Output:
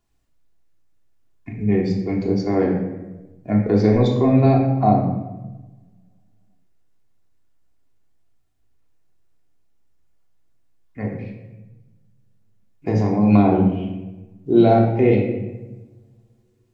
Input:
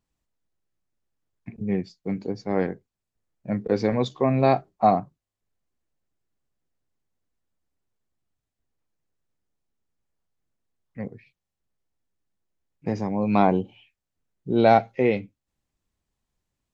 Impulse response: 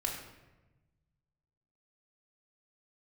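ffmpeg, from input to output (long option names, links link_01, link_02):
-filter_complex "[0:a]acrossover=split=420[link_01][link_02];[link_02]acompressor=threshold=-34dB:ratio=3[link_03];[link_01][link_03]amix=inputs=2:normalize=0[link_04];[1:a]atrim=start_sample=2205[link_05];[link_04][link_05]afir=irnorm=-1:irlink=0,volume=5.5dB"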